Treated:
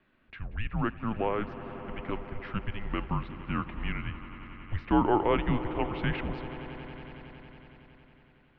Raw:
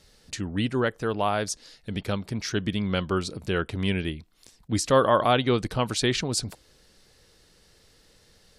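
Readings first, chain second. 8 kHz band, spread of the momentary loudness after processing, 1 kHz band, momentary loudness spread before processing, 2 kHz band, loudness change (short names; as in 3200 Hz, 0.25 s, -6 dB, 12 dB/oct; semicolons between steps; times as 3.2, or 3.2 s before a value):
under -40 dB, 19 LU, -4.5 dB, 13 LU, -6.0 dB, -6.0 dB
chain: mistuned SSB -220 Hz 170–2800 Hz; swelling echo 92 ms, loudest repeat 5, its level -18 dB; gain -4 dB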